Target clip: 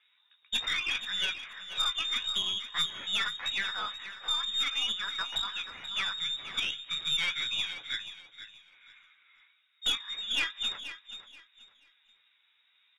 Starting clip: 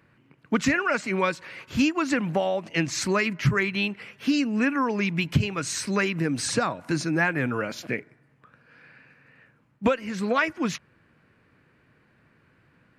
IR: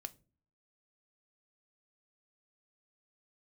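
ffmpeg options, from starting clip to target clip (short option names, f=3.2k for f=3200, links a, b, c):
-filter_complex "[0:a]flanger=delay=9.4:depth=8.2:regen=-24:speed=0.64:shape=triangular,bandreject=f=50:t=h:w=6,bandreject=f=100:t=h:w=6,bandreject=f=150:t=h:w=6,bandreject=f=200:t=h:w=6,bandreject=f=250:t=h:w=6,asplit=2[a][b];[1:a]atrim=start_sample=2205,asetrate=24255,aresample=44100[c];[b][c]afir=irnorm=-1:irlink=0,volume=-8dB[d];[a][d]amix=inputs=2:normalize=0,flanger=delay=2.3:depth=6.9:regen=66:speed=0.32:shape=sinusoidal,acrossover=split=180[e][f];[e]acompressor=threshold=-35dB:ratio=6[g];[g][f]amix=inputs=2:normalize=0,lowpass=f=3.3k:t=q:w=0.5098,lowpass=f=3.3k:t=q:w=0.6013,lowpass=f=3.3k:t=q:w=0.9,lowpass=f=3.3k:t=q:w=2.563,afreqshift=-3900,aeval=exprs='(tanh(11.2*val(0)+0.4)-tanh(0.4))/11.2':c=same,aecho=1:1:481|962|1443:0.251|0.0653|0.017"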